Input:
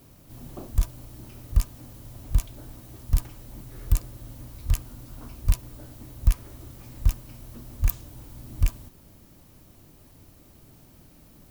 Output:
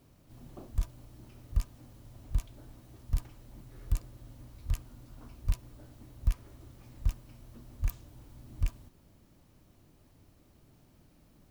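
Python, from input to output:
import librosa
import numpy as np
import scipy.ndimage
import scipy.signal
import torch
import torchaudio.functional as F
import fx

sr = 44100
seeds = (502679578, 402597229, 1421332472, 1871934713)

y = fx.high_shelf(x, sr, hz=8000.0, db=-9.0)
y = y * 10.0 ** (-8.0 / 20.0)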